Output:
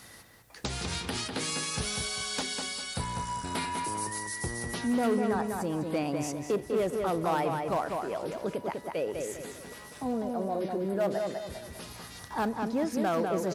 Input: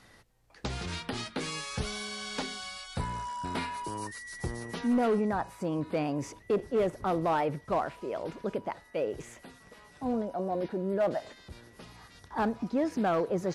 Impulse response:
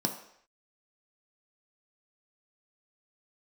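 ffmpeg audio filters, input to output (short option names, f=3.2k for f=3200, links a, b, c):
-filter_complex "[0:a]highpass=48,aemphasis=mode=production:type=50fm,asplit=2[a][b];[b]adelay=199,lowpass=f=3.5k:p=1,volume=-4.5dB,asplit=2[c][d];[d]adelay=199,lowpass=f=3.5k:p=1,volume=0.33,asplit=2[e][f];[f]adelay=199,lowpass=f=3.5k:p=1,volume=0.33,asplit=2[g][h];[h]adelay=199,lowpass=f=3.5k:p=1,volume=0.33[i];[a][c][e][g][i]amix=inputs=5:normalize=0,asplit=2[j][k];[k]acompressor=threshold=-43dB:ratio=6,volume=2.5dB[l];[j][l]amix=inputs=2:normalize=0,volume=-2.5dB"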